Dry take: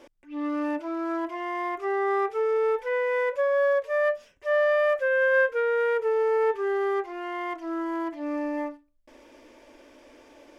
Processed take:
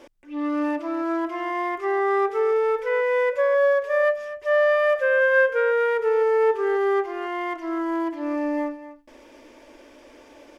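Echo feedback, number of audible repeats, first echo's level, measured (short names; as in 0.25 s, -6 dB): no steady repeat, 1, -13.5 dB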